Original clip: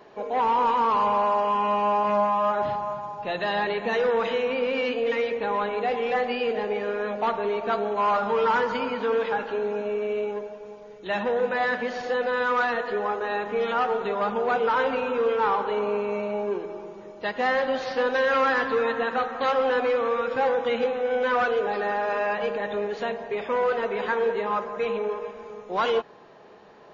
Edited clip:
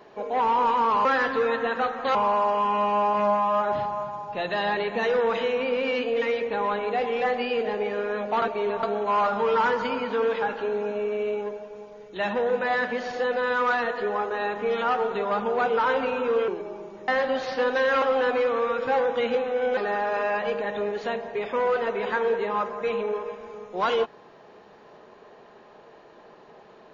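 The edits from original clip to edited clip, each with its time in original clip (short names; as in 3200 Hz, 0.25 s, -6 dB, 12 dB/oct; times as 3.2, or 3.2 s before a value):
7.32–7.73 reverse
15.38–16.52 cut
17.12–17.47 cut
18.41–19.51 move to 1.05
21.26–21.73 cut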